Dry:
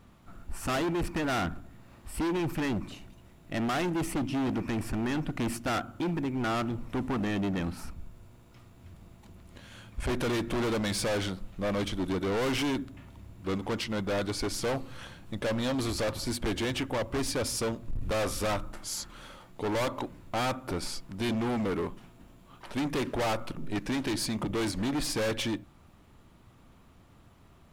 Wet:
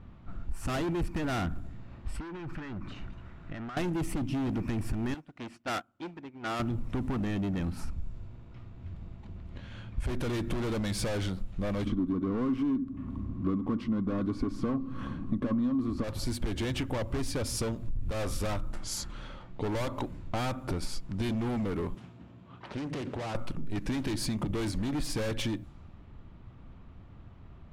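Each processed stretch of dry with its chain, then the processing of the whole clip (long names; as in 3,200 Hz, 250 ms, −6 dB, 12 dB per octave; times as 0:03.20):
0:02.16–0:03.77: parametric band 1,400 Hz +10 dB 1 octave + downward compressor 8 to 1, threshold −41 dBFS + one half of a high-frequency compander encoder only
0:05.14–0:06.60: high-pass filter 540 Hz 6 dB per octave + expander for the loud parts 2.5 to 1, over −45 dBFS
0:11.86–0:16.04: low-pass filter 1,700 Hz 6 dB per octave + hollow resonant body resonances 250/1,100 Hz, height 18 dB, ringing for 40 ms
0:21.94–0:23.35: high-pass filter 85 Hz 24 dB per octave + downward compressor 5 to 1, threshold −35 dBFS + highs frequency-modulated by the lows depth 0.53 ms
whole clip: low-pass that shuts in the quiet parts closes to 2,800 Hz, open at −31 dBFS; low-shelf EQ 180 Hz +11 dB; downward compressor, threshold −28 dBFS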